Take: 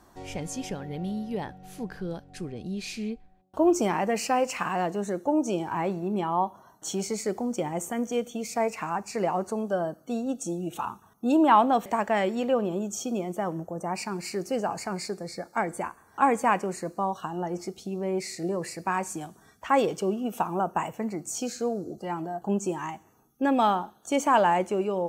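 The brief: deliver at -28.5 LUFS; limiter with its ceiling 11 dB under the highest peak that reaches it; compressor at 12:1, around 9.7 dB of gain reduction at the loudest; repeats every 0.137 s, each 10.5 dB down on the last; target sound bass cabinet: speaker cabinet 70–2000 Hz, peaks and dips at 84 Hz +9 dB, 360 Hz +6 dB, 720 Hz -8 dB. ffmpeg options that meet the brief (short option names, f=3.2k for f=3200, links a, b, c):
-af "acompressor=threshold=-25dB:ratio=12,alimiter=limit=-24dB:level=0:latency=1,highpass=f=70:w=0.5412,highpass=f=70:w=1.3066,equalizer=f=84:t=q:w=4:g=9,equalizer=f=360:t=q:w=4:g=6,equalizer=f=720:t=q:w=4:g=-8,lowpass=f=2k:w=0.5412,lowpass=f=2k:w=1.3066,aecho=1:1:137|274|411:0.299|0.0896|0.0269,volume=5dB"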